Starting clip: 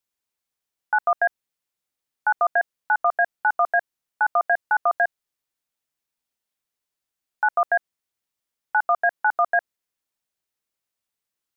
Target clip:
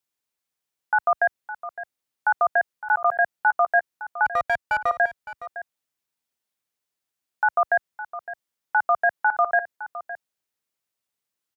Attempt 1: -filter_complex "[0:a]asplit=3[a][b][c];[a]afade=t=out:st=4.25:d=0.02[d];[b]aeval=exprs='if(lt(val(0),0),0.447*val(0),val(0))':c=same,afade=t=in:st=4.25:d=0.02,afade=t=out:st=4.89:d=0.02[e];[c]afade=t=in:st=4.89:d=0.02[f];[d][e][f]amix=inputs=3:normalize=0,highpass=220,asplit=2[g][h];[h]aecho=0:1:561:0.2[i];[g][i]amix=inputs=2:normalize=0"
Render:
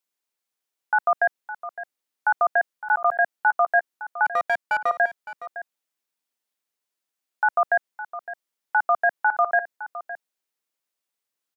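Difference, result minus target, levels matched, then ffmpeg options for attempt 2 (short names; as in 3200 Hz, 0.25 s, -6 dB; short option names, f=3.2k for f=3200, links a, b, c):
125 Hz band -10.5 dB
-filter_complex "[0:a]asplit=3[a][b][c];[a]afade=t=out:st=4.25:d=0.02[d];[b]aeval=exprs='if(lt(val(0),0),0.447*val(0),val(0))':c=same,afade=t=in:st=4.25:d=0.02,afade=t=out:st=4.89:d=0.02[e];[c]afade=t=in:st=4.89:d=0.02[f];[d][e][f]amix=inputs=3:normalize=0,highpass=67,asplit=2[g][h];[h]aecho=0:1:561:0.2[i];[g][i]amix=inputs=2:normalize=0"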